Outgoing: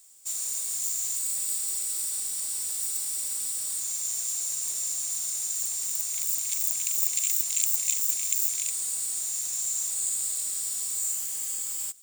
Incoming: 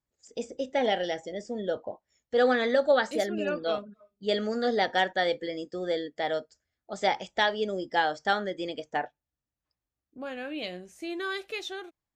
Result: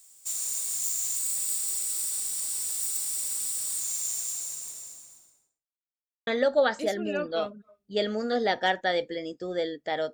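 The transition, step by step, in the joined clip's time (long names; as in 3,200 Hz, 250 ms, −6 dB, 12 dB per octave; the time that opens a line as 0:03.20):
outgoing
0:03.99–0:05.68: fade out and dull
0:05.68–0:06.27: silence
0:06.27: continue with incoming from 0:02.59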